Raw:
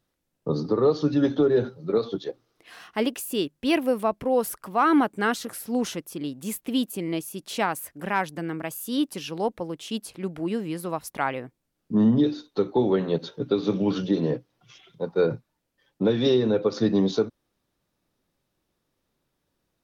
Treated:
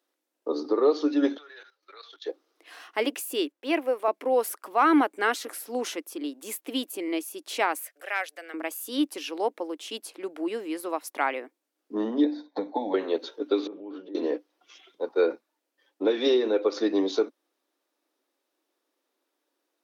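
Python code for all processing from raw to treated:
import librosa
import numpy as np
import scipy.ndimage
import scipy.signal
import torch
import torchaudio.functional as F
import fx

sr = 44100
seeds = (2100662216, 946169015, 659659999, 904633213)

y = fx.chain(x, sr, fx.level_steps(step_db=14),
    fx.highpass_res(hz=1800.0, q=1.6), at=(1.37, 2.26))
y = fx.chain(y, sr, fx.block_float(bits=7),
    fx.highpass(hz=360.0, slope=12),
    fx.high_shelf(hz=2700.0, db=-10.0), at=(3.52, 4.08))
y = fx.chain(y, sr, fx.cheby2_highpass(hz=210.0, order=4, stop_db=50),
    fx.peak_eq(hz=950.0, db=-14.5, octaves=0.5), at=(7.83, 8.54))
y = fx.chain(y, sr, fx.tilt_eq(slope=-3.5),
    fx.fixed_phaser(hz=1900.0, stages=8),
    fx.band_squash(depth_pct=100), at=(12.24, 12.94))
y = fx.chain(y, sr, fx.spacing_loss(db_at_10k=42),
    fx.level_steps(step_db=18), at=(13.67, 14.15))
y = scipy.signal.sosfilt(scipy.signal.ellip(4, 1.0, 60, 290.0, 'highpass', fs=sr, output='sos'), y)
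y = fx.dynamic_eq(y, sr, hz=2200.0, q=3.0, threshold_db=-49.0, ratio=4.0, max_db=5)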